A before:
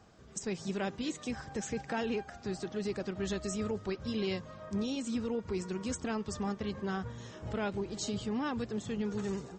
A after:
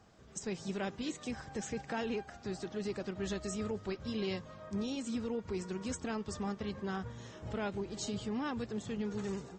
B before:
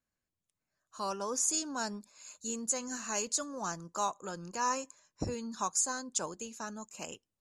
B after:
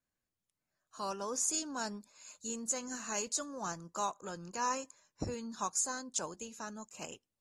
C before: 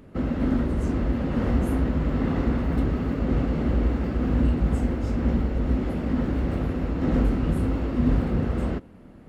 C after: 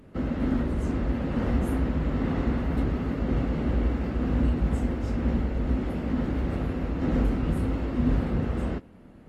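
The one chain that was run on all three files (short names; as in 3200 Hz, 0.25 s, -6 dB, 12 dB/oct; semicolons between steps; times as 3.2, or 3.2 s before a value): gain -2.5 dB; AAC 48 kbps 48000 Hz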